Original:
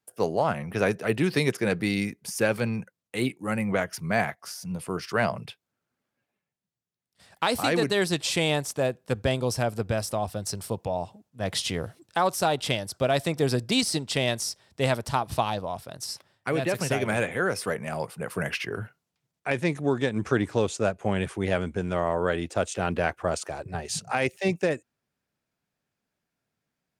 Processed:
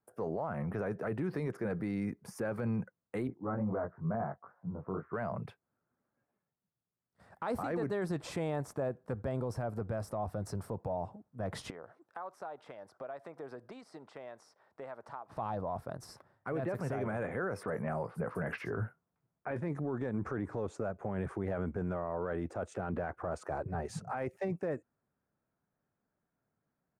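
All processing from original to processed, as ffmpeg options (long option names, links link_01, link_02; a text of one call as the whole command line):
ffmpeg -i in.wav -filter_complex "[0:a]asettb=1/sr,asplit=3[link_01][link_02][link_03];[link_01]atrim=end=3.274[link_04];[link_02]atrim=start=3.27:end=5.13,asetpts=PTS-STARTPTS,afade=type=in:duration=0.004:curve=qsin,afade=type=out:start_time=1.856:duration=0.004:curve=qsin,lowpass=frequency=1300:width=0.5412,lowpass=frequency=1300:width=1.3066,flanger=delay=17.5:depth=4.1:speed=2.2[link_05];[link_03]atrim=start=5.126[link_06];[link_04][link_05]acrossfade=duration=0.004:curve1=hsin:curve2=qsin[link_07];[link_07][link_06]acrossfade=duration=0.004:curve1=qsin:curve2=hsin,asettb=1/sr,asplit=3[link_08][link_09][link_10];[link_08]atrim=end=11.704[link_11];[link_09]atrim=start=11.7:end=15.37,asetpts=PTS-STARTPTS,afade=type=in:duration=0.004:curve=qsin,afade=type=out:start_time=3.666:duration=0.004:curve=qsin,highpass=630,aemphasis=mode=reproduction:type=bsi,acompressor=threshold=-45dB:ratio=3:attack=3.2:release=140:knee=1:detection=peak[link_12];[link_10]atrim=start=15.366[link_13];[link_11][link_12]acrossfade=duration=0.004:curve1=hsin:curve2=qsin[link_14];[link_14][link_13]acrossfade=duration=0.004:curve1=qsin:curve2=hsin,asettb=1/sr,asplit=3[link_15][link_16][link_17];[link_15]atrim=end=17.634[link_18];[link_16]atrim=start=17.63:end=19.68,asetpts=PTS-STARTPTS,afade=type=in:duration=0.004:curve=qsin,afade=type=out:start_time=2.046:duration=0.004:curve=qsin,asplit=2[link_19][link_20];[link_20]adelay=18,volume=-13dB[link_21];[link_19][link_21]amix=inputs=2:normalize=0,atrim=end_sample=90405,acrossover=split=4800[link_22][link_23];[link_23]adelay=50[link_24];[link_22][link_24]amix=inputs=2:normalize=0,atrim=end_sample=90405[link_25];[link_17]atrim=start=19.676[link_26];[link_18][link_25]acrossfade=duration=0.004:curve1=hsin:curve2=qsin[link_27];[link_27][link_26]acrossfade=duration=0.004:curve1=qsin:curve2=hsin,firequalizer=gain_entry='entry(1300,0);entry(2900,-20);entry(9500,-18)':delay=0.05:min_phase=1,acompressor=threshold=-26dB:ratio=6,alimiter=level_in=3dB:limit=-24dB:level=0:latency=1:release=11,volume=-3dB" out.wav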